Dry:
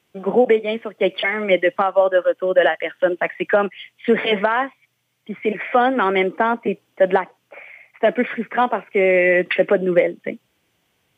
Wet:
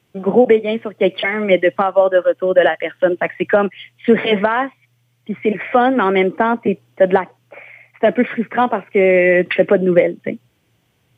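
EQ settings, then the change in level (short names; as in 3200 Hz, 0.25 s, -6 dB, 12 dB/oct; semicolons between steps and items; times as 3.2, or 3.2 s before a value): bell 120 Hz +10 dB 0.26 oct; low shelf 340 Hz +7 dB; +1.0 dB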